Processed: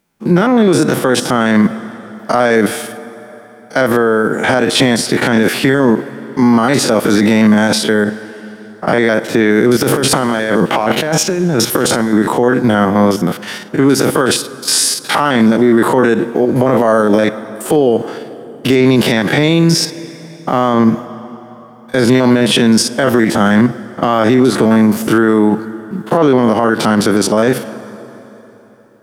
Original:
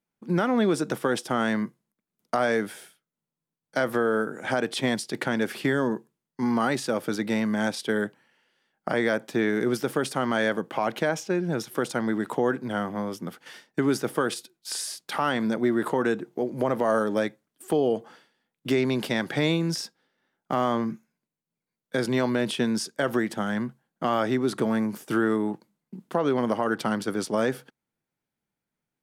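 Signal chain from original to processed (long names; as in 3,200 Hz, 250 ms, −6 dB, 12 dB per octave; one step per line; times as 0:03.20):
spectrum averaged block by block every 50 ms
0:09.81–0:12.13: compressor whose output falls as the input rises −34 dBFS, ratio −1
dense smooth reverb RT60 3.6 s, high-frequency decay 0.8×, DRR 19.5 dB
boost into a limiter +22.5 dB
level −1 dB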